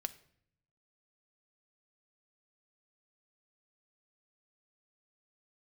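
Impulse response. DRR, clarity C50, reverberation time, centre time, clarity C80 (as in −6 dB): 10.0 dB, 17.0 dB, 0.65 s, 4 ms, 20.0 dB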